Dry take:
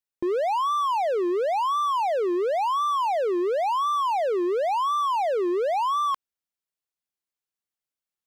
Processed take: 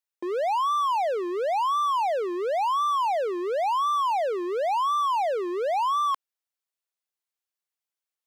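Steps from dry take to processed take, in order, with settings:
high-pass filter 450 Hz 12 dB per octave

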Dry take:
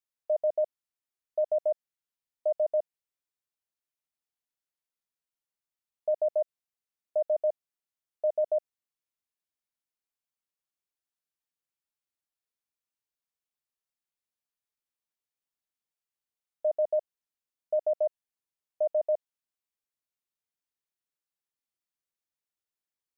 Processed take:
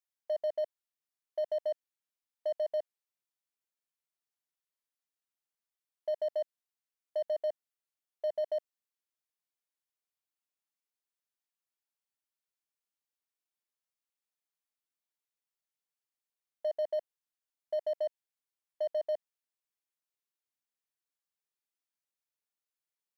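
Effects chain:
high-pass filter 320 Hz 6 dB per octave
in parallel at −12 dB: wave folding −35.5 dBFS
on the sum: level −4.5 dB

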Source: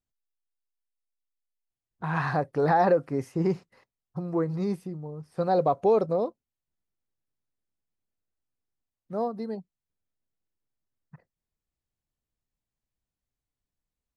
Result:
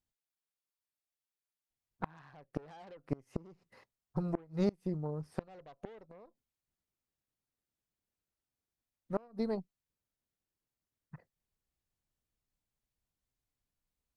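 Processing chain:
harmonic generator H 3 −31 dB, 5 −21 dB, 7 −34 dB, 8 −19 dB, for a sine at −11.5 dBFS
gate with flip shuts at −17 dBFS, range −29 dB
level −2.5 dB

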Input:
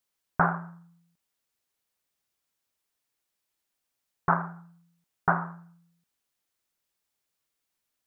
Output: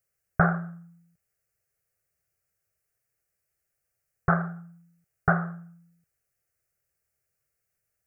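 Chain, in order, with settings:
parametric band 99 Hz +12 dB 2.8 octaves
phaser with its sweep stopped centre 960 Hz, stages 6
level +2.5 dB

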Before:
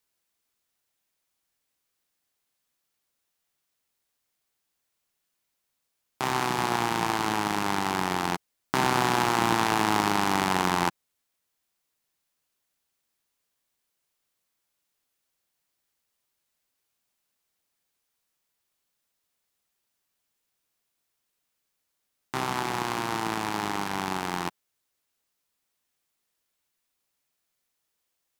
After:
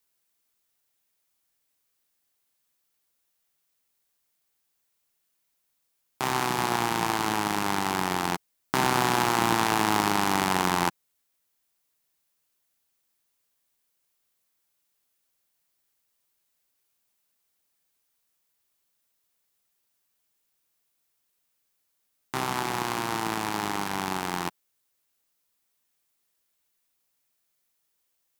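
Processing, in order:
high-shelf EQ 9,500 Hz +6.5 dB

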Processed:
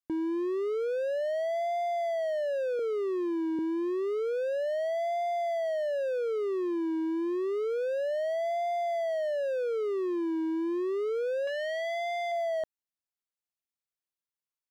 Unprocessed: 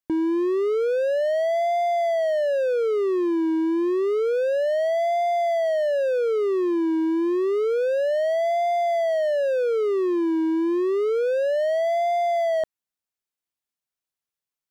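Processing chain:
0:02.79–0:03.59: Butterworth high-pass 150 Hz
0:11.47–0:12.32: saturating transformer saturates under 1,100 Hz
level −8 dB

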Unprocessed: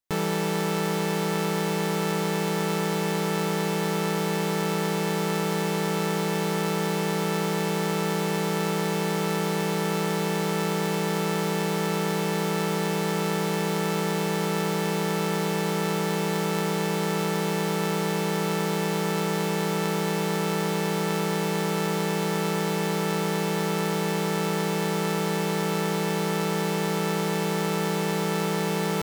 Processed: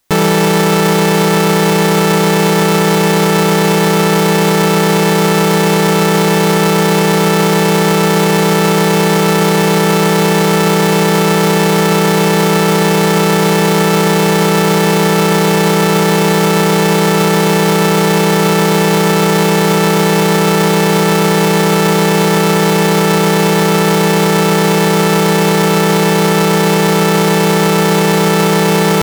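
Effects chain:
boost into a limiter +27.5 dB
level −2.5 dB

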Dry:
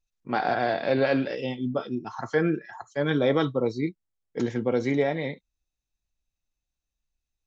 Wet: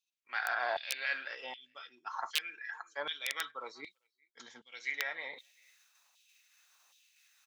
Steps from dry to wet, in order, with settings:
gain on a spectral selection 0:03.91–0:04.72, 260–3,000 Hz −10 dB
reversed playback
upward compression, threshold −30 dBFS
reversed playback
far-end echo of a speakerphone 390 ms, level −28 dB
wrap-around overflow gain 12 dB
auto-filter high-pass saw down 1.3 Hz 870–3,300 Hz
level −7 dB

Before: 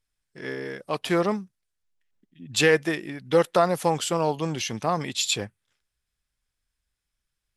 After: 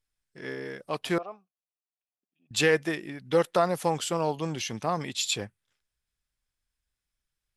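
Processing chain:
0:01.18–0:02.51: formant filter a
level −3.5 dB

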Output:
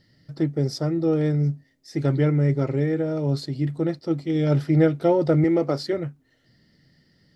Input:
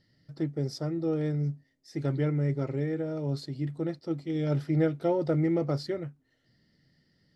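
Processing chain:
0:05.44–0:05.93: high-pass filter 220 Hz
level +7.5 dB

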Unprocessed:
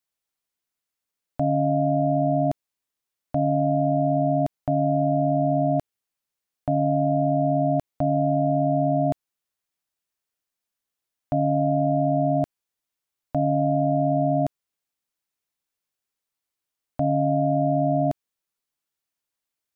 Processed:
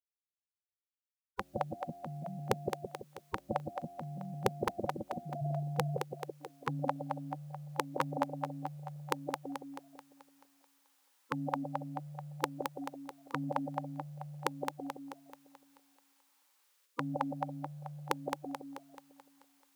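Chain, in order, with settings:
echo with a time of its own for lows and highs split 540 Hz, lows 166 ms, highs 217 ms, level −5 dB
high-pass filter sweep 220 Hz → 720 Hz, 0:05.23–0:07.07
gate on every frequency bin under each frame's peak −25 dB weak
level +12.5 dB

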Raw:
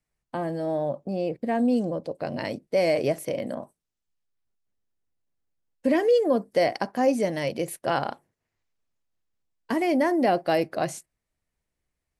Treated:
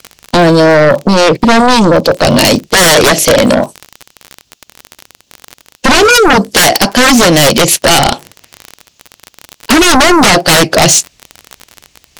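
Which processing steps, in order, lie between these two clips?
high-pass filter 45 Hz
flat-topped bell 4,300 Hz +12 dB
surface crackle 36 per second −41 dBFS
in parallel at +1 dB: downward compressor, threshold −30 dBFS, peak gain reduction 13.5 dB
on the sum: sine wavefolder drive 17 dB, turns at −4.5 dBFS
level +2 dB

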